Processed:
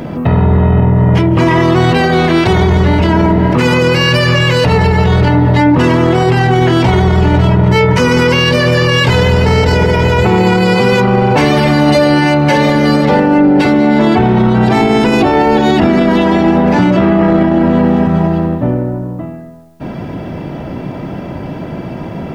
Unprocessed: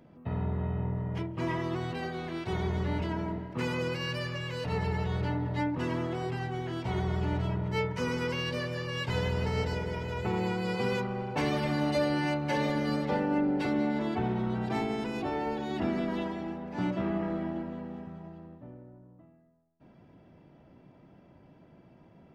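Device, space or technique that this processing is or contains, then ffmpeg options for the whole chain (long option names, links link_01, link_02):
loud club master: -af "acompressor=threshold=-35dB:ratio=2,asoftclip=type=hard:threshold=-26dB,alimiter=level_in=35dB:limit=-1dB:release=50:level=0:latency=1,volume=-1dB"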